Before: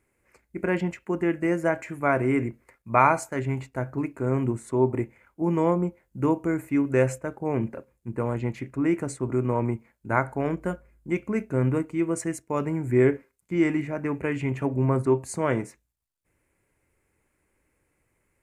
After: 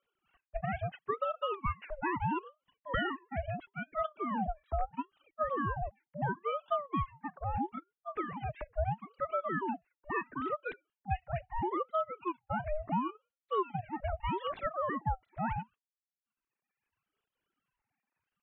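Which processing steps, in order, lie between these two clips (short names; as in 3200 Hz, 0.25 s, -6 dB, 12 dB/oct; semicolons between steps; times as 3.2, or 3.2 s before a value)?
sine-wave speech; compressor 10:1, threshold -26 dBFS, peak gain reduction 16.5 dB; reverb removal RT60 1.5 s; ring modulator with a swept carrier 620 Hz, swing 55%, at 0.75 Hz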